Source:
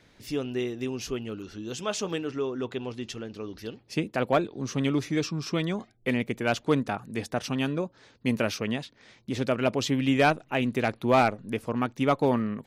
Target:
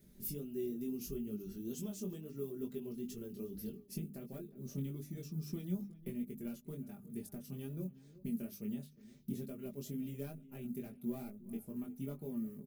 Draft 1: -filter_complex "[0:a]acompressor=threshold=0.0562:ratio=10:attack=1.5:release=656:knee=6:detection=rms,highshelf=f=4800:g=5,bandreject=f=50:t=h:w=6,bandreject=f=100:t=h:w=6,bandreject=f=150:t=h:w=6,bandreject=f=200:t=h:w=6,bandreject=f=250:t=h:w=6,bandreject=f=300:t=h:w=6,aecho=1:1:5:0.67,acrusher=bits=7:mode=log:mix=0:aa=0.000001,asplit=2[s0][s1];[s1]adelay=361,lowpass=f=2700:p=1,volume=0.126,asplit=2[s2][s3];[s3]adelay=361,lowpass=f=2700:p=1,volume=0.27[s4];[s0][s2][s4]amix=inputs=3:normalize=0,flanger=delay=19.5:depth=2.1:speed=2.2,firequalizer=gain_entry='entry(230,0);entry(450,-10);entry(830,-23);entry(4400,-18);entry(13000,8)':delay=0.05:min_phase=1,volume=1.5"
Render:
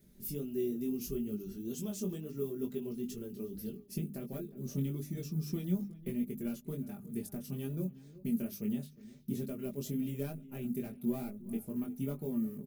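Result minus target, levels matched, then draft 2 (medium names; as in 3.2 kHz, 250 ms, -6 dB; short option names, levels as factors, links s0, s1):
compression: peak gain reduction -6 dB
-filter_complex "[0:a]acompressor=threshold=0.0266:ratio=10:attack=1.5:release=656:knee=6:detection=rms,highshelf=f=4800:g=5,bandreject=f=50:t=h:w=6,bandreject=f=100:t=h:w=6,bandreject=f=150:t=h:w=6,bandreject=f=200:t=h:w=6,bandreject=f=250:t=h:w=6,bandreject=f=300:t=h:w=6,aecho=1:1:5:0.67,acrusher=bits=7:mode=log:mix=0:aa=0.000001,asplit=2[s0][s1];[s1]adelay=361,lowpass=f=2700:p=1,volume=0.126,asplit=2[s2][s3];[s3]adelay=361,lowpass=f=2700:p=1,volume=0.27[s4];[s0][s2][s4]amix=inputs=3:normalize=0,flanger=delay=19.5:depth=2.1:speed=2.2,firequalizer=gain_entry='entry(230,0);entry(450,-10);entry(830,-23);entry(4400,-18);entry(13000,8)':delay=0.05:min_phase=1,volume=1.5"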